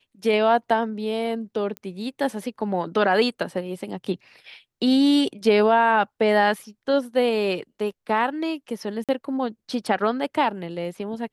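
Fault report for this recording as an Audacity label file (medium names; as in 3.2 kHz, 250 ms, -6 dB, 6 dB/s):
1.770000	1.770000	pop -19 dBFS
9.040000	9.090000	dropout 47 ms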